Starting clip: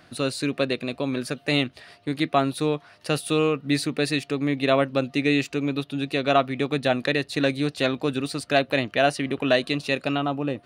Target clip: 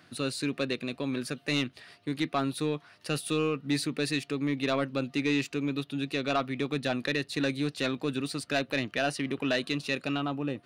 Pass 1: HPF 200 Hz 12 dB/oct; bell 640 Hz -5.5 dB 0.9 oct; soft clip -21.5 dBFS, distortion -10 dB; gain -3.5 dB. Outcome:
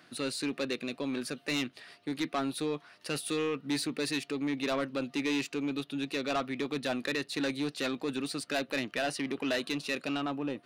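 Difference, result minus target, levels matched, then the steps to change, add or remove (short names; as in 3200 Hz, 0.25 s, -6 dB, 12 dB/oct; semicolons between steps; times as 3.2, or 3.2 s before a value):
125 Hz band -6.0 dB; soft clip: distortion +7 dB
change: HPF 94 Hz 12 dB/oct; change: soft clip -14 dBFS, distortion -16 dB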